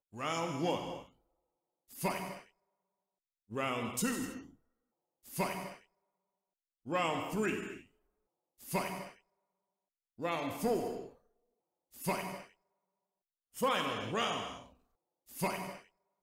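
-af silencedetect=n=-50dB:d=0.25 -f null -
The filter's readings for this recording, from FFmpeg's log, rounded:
silence_start: 1.06
silence_end: 1.90 | silence_duration: 0.85
silence_start: 2.42
silence_end: 3.51 | silence_duration: 1.09
silence_start: 4.49
silence_end: 5.25 | silence_duration: 0.76
silence_start: 5.77
silence_end: 6.86 | silence_duration: 1.09
silence_start: 7.82
silence_end: 8.60 | silence_duration: 0.78
silence_start: 9.12
silence_end: 10.19 | silence_duration: 1.07
silence_start: 11.13
silence_end: 11.94 | silence_duration: 0.81
silence_start: 12.45
silence_end: 13.55 | silence_duration: 1.10
silence_start: 14.66
silence_end: 15.29 | silence_duration: 0.63
silence_start: 15.80
silence_end: 16.22 | silence_duration: 0.42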